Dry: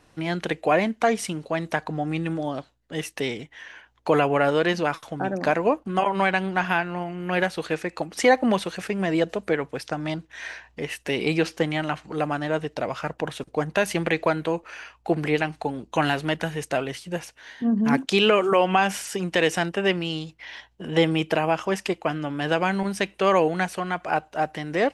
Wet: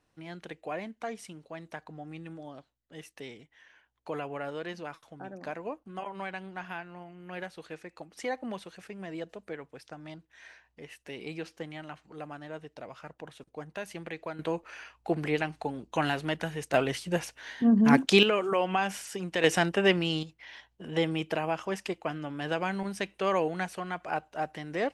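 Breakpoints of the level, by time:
−16 dB
from 0:14.39 −6 dB
from 0:16.74 +0.5 dB
from 0:18.23 −8 dB
from 0:19.44 −1 dB
from 0:20.23 −8 dB

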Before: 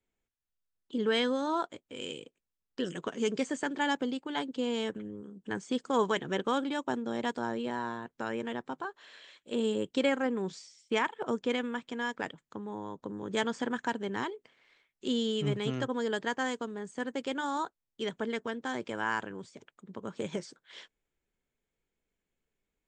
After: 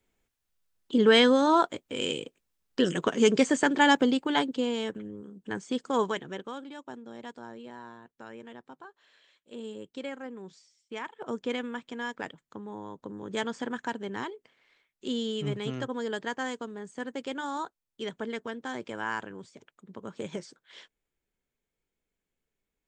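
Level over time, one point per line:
0:04.32 +9 dB
0:04.77 +1 dB
0:06.00 +1 dB
0:06.54 −10 dB
0:10.93 −10 dB
0:11.39 −1 dB

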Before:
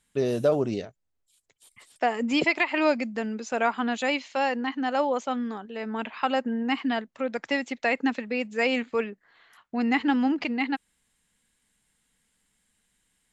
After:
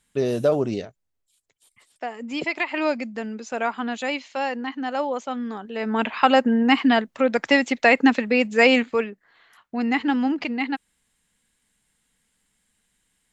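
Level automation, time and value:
0:00.82 +2.5 dB
0:02.19 −7.5 dB
0:02.64 −0.5 dB
0:05.33 −0.5 dB
0:06.02 +9 dB
0:08.71 +9 dB
0:09.11 +1.5 dB

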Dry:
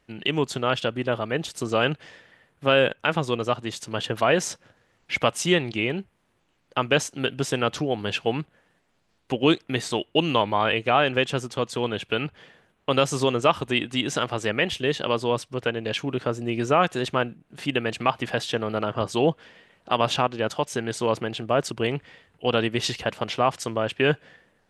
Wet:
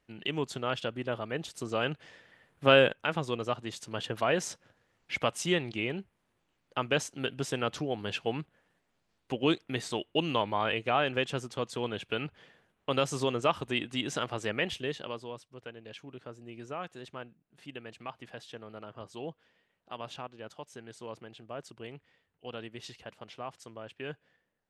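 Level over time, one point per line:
0:01.91 −8.5 dB
0:02.74 −1 dB
0:03.03 −7.5 dB
0:14.72 −7.5 dB
0:15.37 −19 dB

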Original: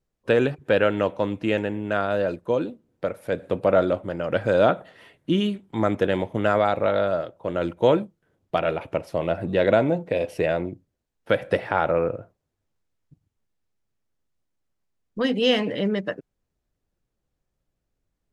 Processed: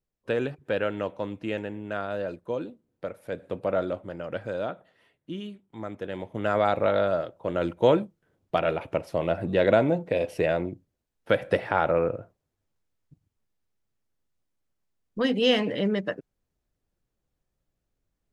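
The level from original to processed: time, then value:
0:04.21 −7.5 dB
0:04.71 −14 dB
0:05.98 −14 dB
0:06.68 −1.5 dB

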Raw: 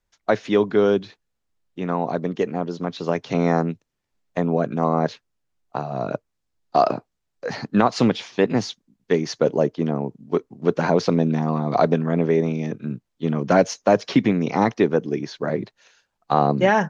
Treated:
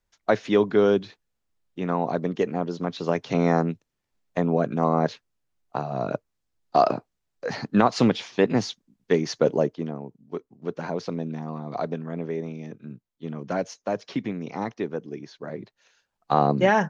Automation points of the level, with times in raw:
0:09.55 −1.5 dB
0:10.00 −11 dB
0:15.52 −11 dB
0:16.33 −2 dB

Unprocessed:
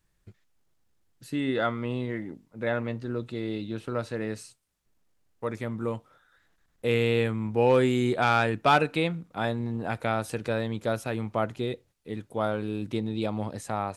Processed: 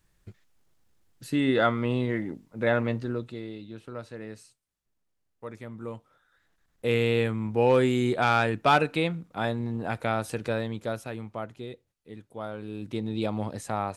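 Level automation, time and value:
0:02.98 +4 dB
0:03.55 −8 dB
0:05.67 −8 dB
0:06.90 0 dB
0:10.50 0 dB
0:11.47 −8.5 dB
0:12.49 −8.5 dB
0:13.16 +0.5 dB

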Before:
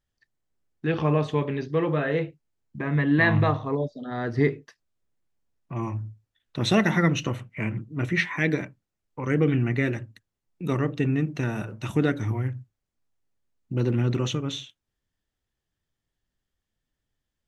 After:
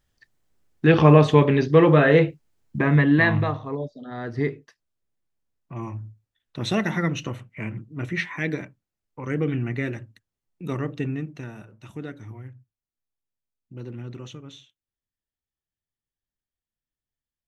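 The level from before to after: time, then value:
0:02.78 +9.5 dB
0:03.49 −3 dB
0:11.02 −3 dB
0:11.66 −12.5 dB

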